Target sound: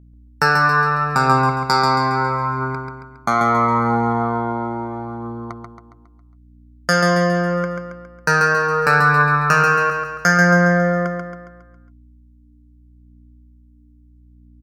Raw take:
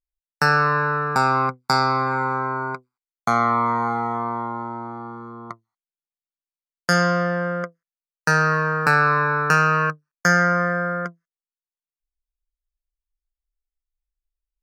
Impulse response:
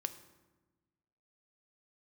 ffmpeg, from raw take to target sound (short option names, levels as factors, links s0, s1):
-af "aeval=exprs='val(0)+0.00316*(sin(2*PI*60*n/s)+sin(2*PI*2*60*n/s)/2+sin(2*PI*3*60*n/s)/3+sin(2*PI*4*60*n/s)/4+sin(2*PI*5*60*n/s)/5)':c=same,aphaser=in_gain=1:out_gain=1:delay=3.4:decay=0.33:speed=0.76:type=triangular,aecho=1:1:137|274|411|548|685|822:0.562|0.276|0.135|0.0662|0.0324|0.0159,volume=1.19"